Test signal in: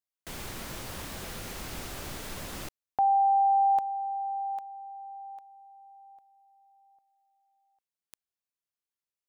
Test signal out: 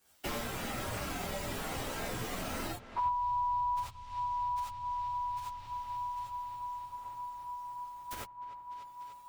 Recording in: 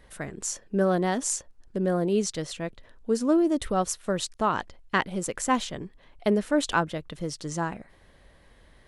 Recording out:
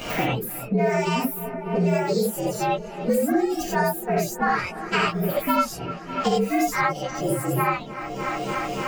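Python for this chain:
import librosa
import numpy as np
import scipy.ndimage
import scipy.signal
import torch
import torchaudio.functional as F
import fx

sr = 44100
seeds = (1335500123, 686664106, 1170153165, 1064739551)

y = fx.partial_stretch(x, sr, pct=119)
y = fx.hum_notches(y, sr, base_hz=50, count=3)
y = fx.dereverb_blind(y, sr, rt60_s=1.2)
y = fx.echo_wet_lowpass(y, sr, ms=295, feedback_pct=78, hz=3600.0, wet_db=-21)
y = fx.rev_gated(y, sr, seeds[0], gate_ms=110, shape='rising', drr_db=-5.5)
y = fx.band_squash(y, sr, depth_pct=100)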